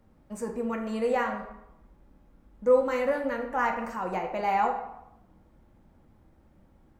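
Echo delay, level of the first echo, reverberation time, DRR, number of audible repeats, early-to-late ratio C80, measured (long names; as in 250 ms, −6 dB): no echo audible, no echo audible, 0.85 s, 1.5 dB, no echo audible, 9.5 dB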